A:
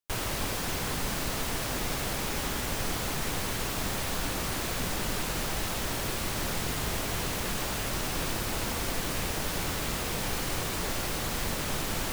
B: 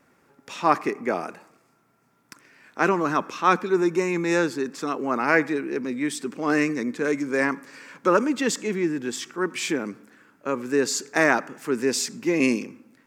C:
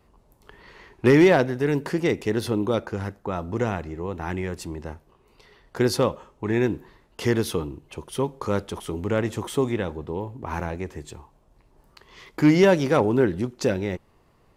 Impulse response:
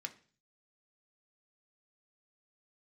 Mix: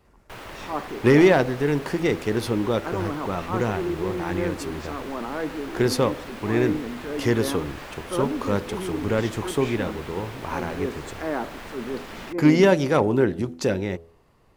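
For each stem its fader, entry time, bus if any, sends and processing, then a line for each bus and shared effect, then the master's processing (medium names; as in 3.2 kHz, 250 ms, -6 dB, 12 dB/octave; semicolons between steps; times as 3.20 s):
-3.5 dB, 0.20 s, no send, tone controls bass -7 dB, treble -14 dB
-4.5 dB, 0.05 s, no send, low-pass that closes with the level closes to 920 Hz, closed at -21 dBFS; transient shaper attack -7 dB, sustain +3 dB
+0.5 dB, 0.00 s, no send, none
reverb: none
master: de-hum 83.04 Hz, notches 9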